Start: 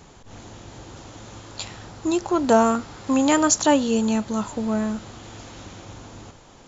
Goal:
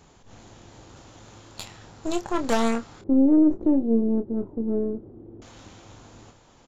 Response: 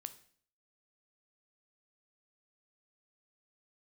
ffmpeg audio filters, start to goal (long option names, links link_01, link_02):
-filter_complex "[0:a]aeval=exprs='0.596*(cos(1*acos(clip(val(0)/0.596,-1,1)))-cos(1*PI/2))+0.0944*(cos(8*acos(clip(val(0)/0.596,-1,1)))-cos(8*PI/2))':channel_layout=same,asettb=1/sr,asplit=3[link_01][link_02][link_03];[link_01]atrim=end=3.014[link_04];[link_02]atrim=start=3.01:end=5.42,asetpts=PTS-STARTPTS,afade=type=in:duration=0.004:curve=qsin,afade=type=out:start_time=2.406:duration=0.004:curve=qsin,lowpass=frequency=360:width_type=q:width=3.5[link_05];[link_03]atrim=start=5.416[link_06];[link_04][link_05]acrossfade=duration=0.004:curve1=hsin:curve2=qsin[link_07];[link_07][link_06]acrossfade=duration=0.004:curve1=qsin:curve2=hsin,asplit=2[link_08][link_09];[link_09]adelay=26,volume=-9dB[link_10];[link_08][link_10]amix=inputs=2:normalize=0,volume=-7dB"